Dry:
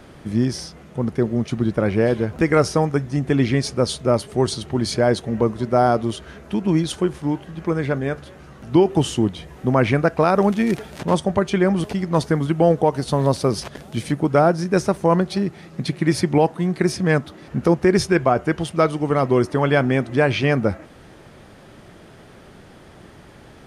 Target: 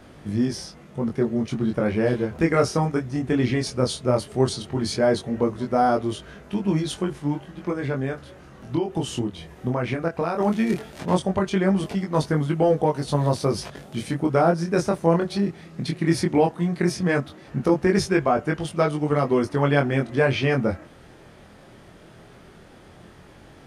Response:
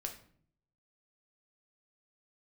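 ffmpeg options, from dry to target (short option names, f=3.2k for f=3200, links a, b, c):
-filter_complex "[0:a]asplit=3[a][b][c];[a]afade=t=out:st=7.7:d=0.02[d];[b]acompressor=threshold=-18dB:ratio=6,afade=t=in:st=7.7:d=0.02,afade=t=out:st=10.39:d=0.02[e];[c]afade=t=in:st=10.39:d=0.02[f];[d][e][f]amix=inputs=3:normalize=0,flanger=delay=20:depth=4.6:speed=0.16"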